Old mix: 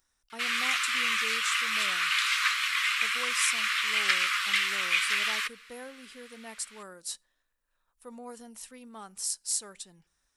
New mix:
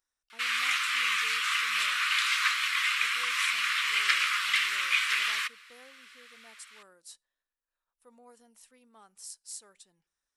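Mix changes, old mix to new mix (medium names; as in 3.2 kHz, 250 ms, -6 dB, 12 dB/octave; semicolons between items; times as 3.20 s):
speech -11.0 dB; master: add tone controls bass -7 dB, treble -1 dB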